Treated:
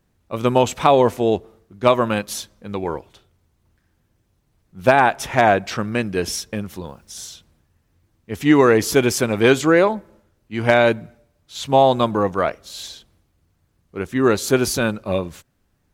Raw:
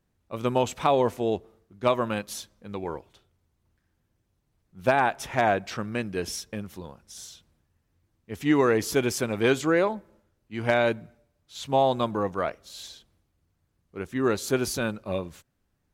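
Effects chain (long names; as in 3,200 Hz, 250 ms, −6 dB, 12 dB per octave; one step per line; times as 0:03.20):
0:06.86–0:07.26: bit-depth reduction 12 bits, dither none
level +8 dB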